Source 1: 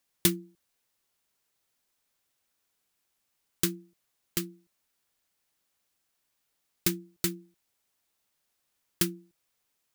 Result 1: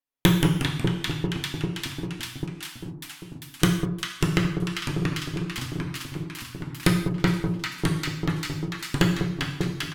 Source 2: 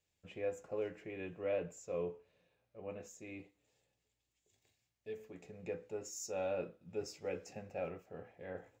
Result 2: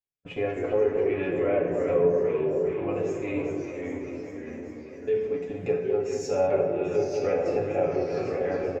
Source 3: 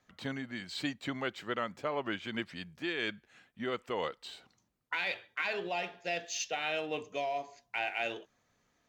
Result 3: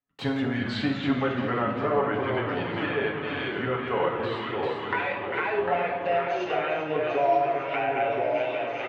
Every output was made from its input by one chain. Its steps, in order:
gate -54 dBFS, range -34 dB; peaking EQ 7.5 kHz -9.5 dB 1.8 oct; comb 7.2 ms, depth 56%; echo whose repeats swap between lows and highs 198 ms, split 950 Hz, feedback 82%, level -8 dB; dynamic bell 280 Hz, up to -7 dB, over -53 dBFS, Q 2.2; in parallel at +0.5 dB: compression, threshold -42 dBFS; on the sum: saturation -15.5 dBFS; low-pass that closes with the level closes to 1.6 kHz, closed at -31 dBFS; gated-style reverb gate 230 ms falling, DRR 2 dB; ever faster or slower copies 147 ms, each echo -2 st, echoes 3, each echo -6 dB; normalise loudness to -27 LUFS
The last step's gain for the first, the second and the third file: +14.0 dB, +8.0 dB, +5.0 dB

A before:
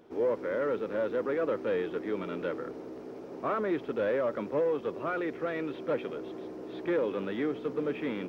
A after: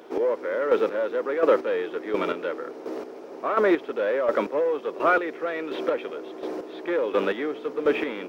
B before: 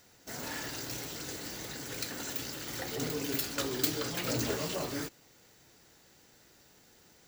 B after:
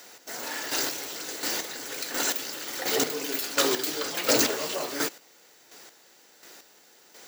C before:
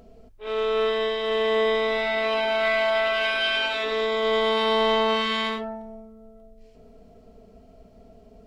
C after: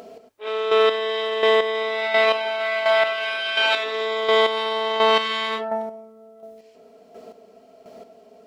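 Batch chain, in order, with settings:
high-pass 380 Hz 12 dB/octave; peak limiter -22.5 dBFS; square tremolo 1.4 Hz, depth 60%, duty 25%; peak normalisation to -9 dBFS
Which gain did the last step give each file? +13.5 dB, +13.5 dB, +13.5 dB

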